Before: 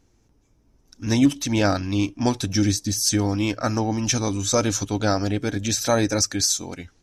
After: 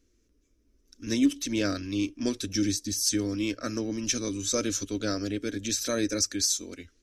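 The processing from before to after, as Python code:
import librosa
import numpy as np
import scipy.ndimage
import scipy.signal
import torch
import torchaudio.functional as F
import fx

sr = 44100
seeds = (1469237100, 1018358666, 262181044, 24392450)

y = fx.fixed_phaser(x, sr, hz=340.0, stages=4)
y = y * 10.0 ** (-4.5 / 20.0)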